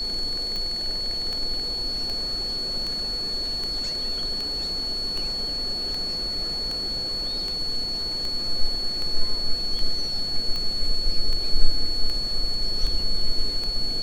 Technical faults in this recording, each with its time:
tick 78 rpm -17 dBFS
tone 4400 Hz -26 dBFS

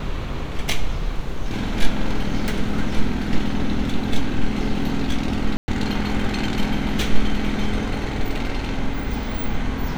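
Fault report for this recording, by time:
5.57–5.68 gap 0.11 s

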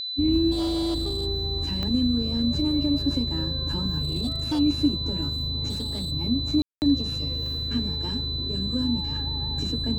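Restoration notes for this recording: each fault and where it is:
tone 4000 Hz -29 dBFS
0.51–1.27 clipped -23 dBFS
1.83 pop -17 dBFS
4.01–4.6 clipped -22.5 dBFS
5.69–6.12 clipped -26.5 dBFS
6.62–6.82 gap 0.199 s

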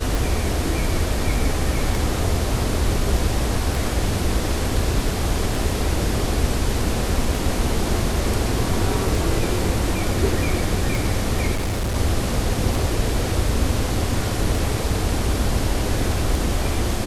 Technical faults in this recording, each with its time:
tick 33 1/3 rpm
11.54–11.96 clipped -19.5 dBFS

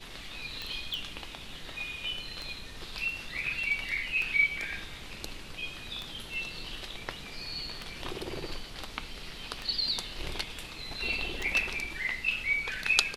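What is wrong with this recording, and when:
tick 33 1/3 rpm -21 dBFS
0.94 pop

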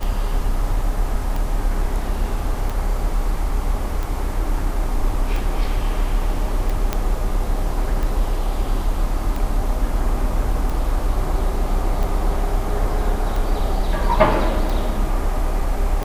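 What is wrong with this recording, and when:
tick 45 rpm
6.93 pop -7 dBFS

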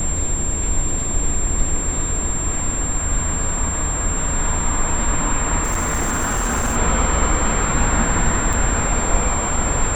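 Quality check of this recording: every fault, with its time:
tone 7400 Hz -23 dBFS
5.63–6.77 clipped -16 dBFS
8.53 gap 4 ms

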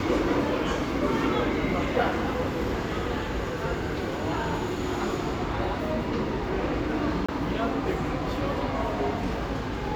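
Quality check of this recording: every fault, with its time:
7.26–7.29 gap 25 ms

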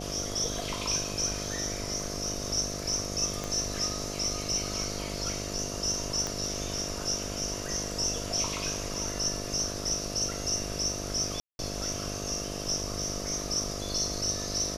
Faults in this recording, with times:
buzz 50 Hz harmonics 14 -38 dBFS
3.44 pop -19 dBFS
6.27 pop -18 dBFS
11.4–11.59 gap 0.191 s

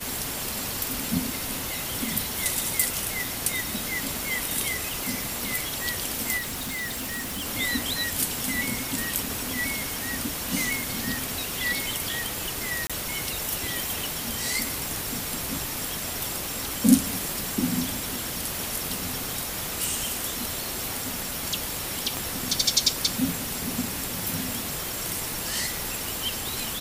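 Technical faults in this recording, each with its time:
6.37–7.47 clipped -28.5 dBFS
12.87–12.9 gap 26 ms
22.17 pop

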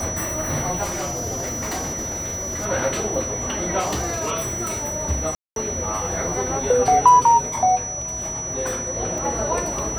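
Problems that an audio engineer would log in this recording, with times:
tone 5900 Hz -27 dBFS
0.83–2.66 clipped -23 dBFS
3.79–4.32 clipped -20.5 dBFS
5.35–5.56 gap 0.212 s
9.18 gap 2.2 ms

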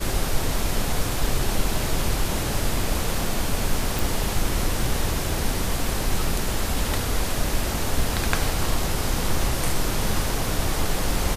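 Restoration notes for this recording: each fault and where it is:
3.99 pop

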